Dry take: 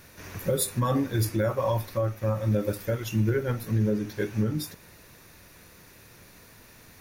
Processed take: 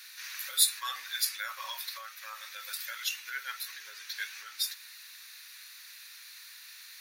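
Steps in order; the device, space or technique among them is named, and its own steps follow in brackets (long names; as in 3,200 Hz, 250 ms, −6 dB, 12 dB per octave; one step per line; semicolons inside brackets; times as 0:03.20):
headphones lying on a table (high-pass filter 1,500 Hz 24 dB per octave; parametric band 4,100 Hz +9 dB 0.46 octaves)
level +3.5 dB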